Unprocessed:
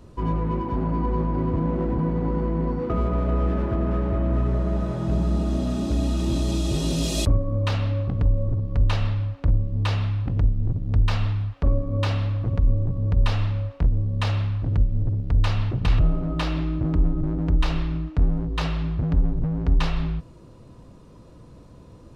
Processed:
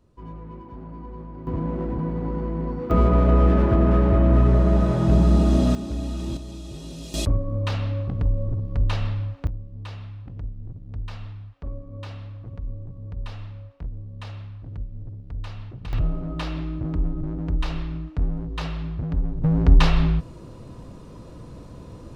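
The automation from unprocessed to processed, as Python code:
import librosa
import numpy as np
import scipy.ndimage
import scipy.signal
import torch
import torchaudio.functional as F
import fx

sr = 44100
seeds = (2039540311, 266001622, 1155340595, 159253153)

y = fx.gain(x, sr, db=fx.steps((0.0, -14.0), (1.47, -3.0), (2.91, 6.0), (5.75, -5.5), (6.37, -13.0), (7.14, -2.0), (9.47, -13.0), (15.93, -4.0), (19.44, 6.0)))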